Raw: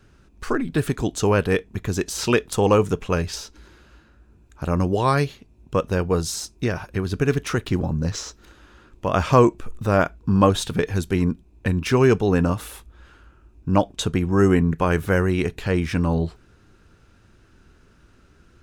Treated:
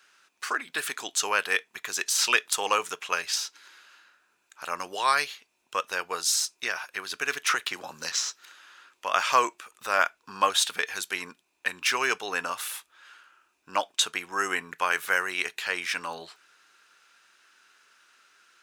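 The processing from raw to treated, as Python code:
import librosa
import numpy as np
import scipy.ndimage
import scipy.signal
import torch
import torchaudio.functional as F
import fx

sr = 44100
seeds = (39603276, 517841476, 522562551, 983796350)

y = fx.band_squash(x, sr, depth_pct=100, at=(7.48, 8.12))
y = scipy.signal.sosfilt(scipy.signal.butter(2, 1400.0, 'highpass', fs=sr, output='sos'), y)
y = y * librosa.db_to_amplitude(4.5)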